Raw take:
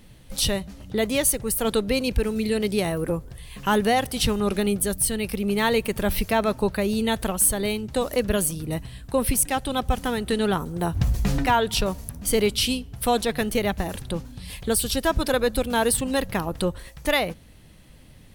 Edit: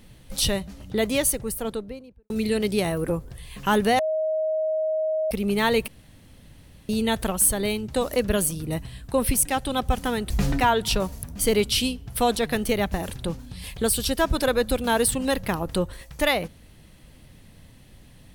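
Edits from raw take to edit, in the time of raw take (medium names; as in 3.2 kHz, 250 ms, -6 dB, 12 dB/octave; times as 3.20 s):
1.12–2.30 s: studio fade out
3.99–5.31 s: bleep 629 Hz -21.5 dBFS
5.88–6.89 s: room tone
10.30–11.16 s: delete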